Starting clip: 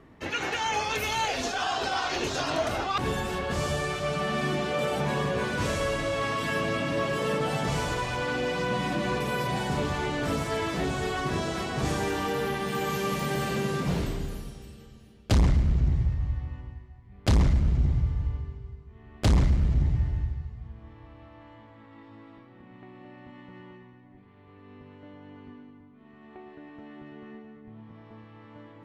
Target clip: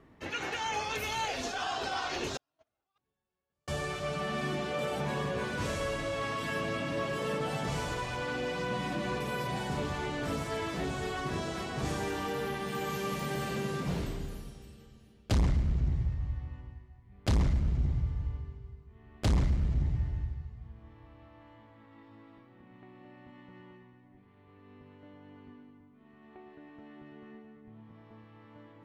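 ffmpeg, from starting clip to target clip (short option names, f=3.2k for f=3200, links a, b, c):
-filter_complex "[0:a]asettb=1/sr,asplit=3[a][b][c];[a]atrim=end=2.374[d];[b]atrim=start=2.37:end=3.68,asetpts=PTS-STARTPTS,afade=t=in:d=0.004:c=qsin,afade=t=out:st=1.306:d=0.004:c=qsin,agate=range=-53dB:threshold=-20dB:ratio=16:detection=peak[e];[c]atrim=start=3.676[f];[d][e]acrossfade=d=0.004:c1=hsin:c2=qsin[g];[g][f]acrossfade=d=0.004:c1=qsin:c2=hsin,volume=-5.5dB"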